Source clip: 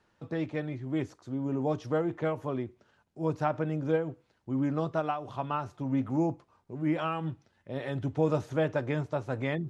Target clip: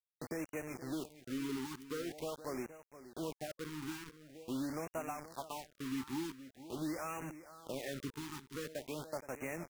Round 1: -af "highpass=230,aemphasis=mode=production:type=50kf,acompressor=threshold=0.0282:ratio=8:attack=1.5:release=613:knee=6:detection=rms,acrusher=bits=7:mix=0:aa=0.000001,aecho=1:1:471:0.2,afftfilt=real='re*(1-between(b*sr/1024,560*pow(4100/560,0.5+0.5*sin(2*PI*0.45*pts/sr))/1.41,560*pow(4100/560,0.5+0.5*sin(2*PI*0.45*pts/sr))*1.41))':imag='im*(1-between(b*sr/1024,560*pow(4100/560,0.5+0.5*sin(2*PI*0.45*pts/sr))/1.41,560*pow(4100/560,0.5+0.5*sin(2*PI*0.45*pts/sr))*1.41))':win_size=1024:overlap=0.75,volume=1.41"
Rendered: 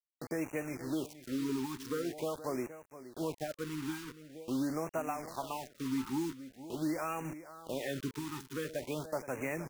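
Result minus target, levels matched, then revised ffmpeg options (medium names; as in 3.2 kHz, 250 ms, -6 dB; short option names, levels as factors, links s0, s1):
compression: peak gain reduction -5.5 dB
-af "highpass=230,aemphasis=mode=production:type=50kf,acompressor=threshold=0.0141:ratio=8:attack=1.5:release=613:knee=6:detection=rms,acrusher=bits=7:mix=0:aa=0.000001,aecho=1:1:471:0.2,afftfilt=real='re*(1-between(b*sr/1024,560*pow(4100/560,0.5+0.5*sin(2*PI*0.45*pts/sr))/1.41,560*pow(4100/560,0.5+0.5*sin(2*PI*0.45*pts/sr))*1.41))':imag='im*(1-between(b*sr/1024,560*pow(4100/560,0.5+0.5*sin(2*PI*0.45*pts/sr))/1.41,560*pow(4100/560,0.5+0.5*sin(2*PI*0.45*pts/sr))*1.41))':win_size=1024:overlap=0.75,volume=1.41"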